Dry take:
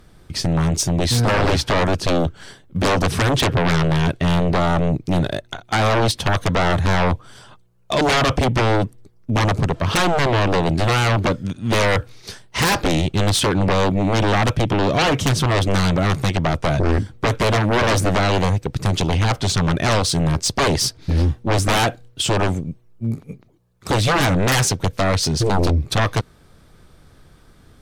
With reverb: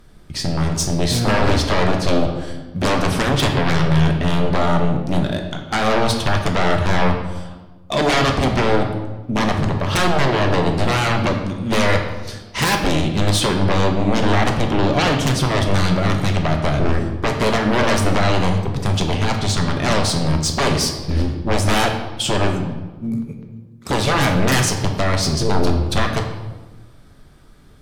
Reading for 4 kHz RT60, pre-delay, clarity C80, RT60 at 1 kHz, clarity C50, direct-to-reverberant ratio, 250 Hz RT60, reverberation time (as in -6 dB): 0.90 s, 3 ms, 8.0 dB, 1.1 s, 6.0 dB, 3.0 dB, 1.9 s, 1.3 s